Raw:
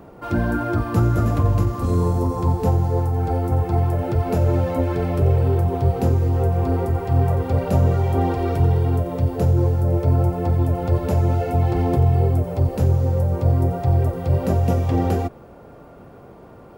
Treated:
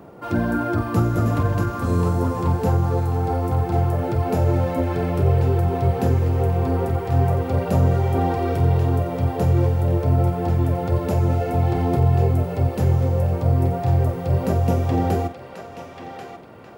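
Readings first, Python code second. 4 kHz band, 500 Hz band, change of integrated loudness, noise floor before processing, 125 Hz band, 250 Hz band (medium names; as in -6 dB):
no reading, 0.0 dB, -0.5 dB, -44 dBFS, -1.0 dB, 0.0 dB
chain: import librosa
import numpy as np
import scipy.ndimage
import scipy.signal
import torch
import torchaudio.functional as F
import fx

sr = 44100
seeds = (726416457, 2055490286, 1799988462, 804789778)

y = scipy.signal.sosfilt(scipy.signal.butter(2, 84.0, 'highpass', fs=sr, output='sos'), x)
y = fx.doubler(y, sr, ms=47.0, db=-12.0)
y = fx.echo_banded(y, sr, ms=1088, feedback_pct=49, hz=2400.0, wet_db=-4)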